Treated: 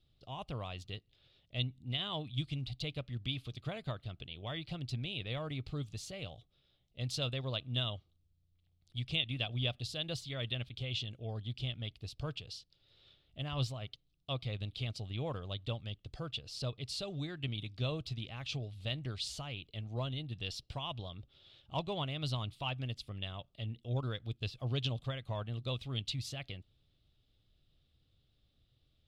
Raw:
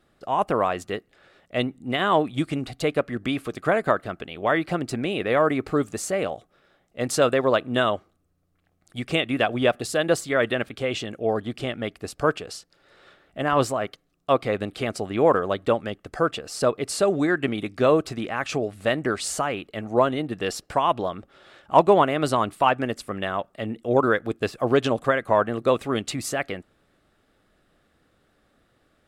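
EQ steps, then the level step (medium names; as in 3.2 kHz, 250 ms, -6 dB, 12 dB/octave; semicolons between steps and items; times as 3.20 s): FFT filter 130 Hz 0 dB, 190 Hz -13 dB, 1.7 kHz -22 dB, 3.4 kHz +7 dB, 6.7 kHz +10 dB, 13 kHz +12 dB; dynamic bell 370 Hz, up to -6 dB, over -50 dBFS, Q 1.3; distance through air 340 m; -1.5 dB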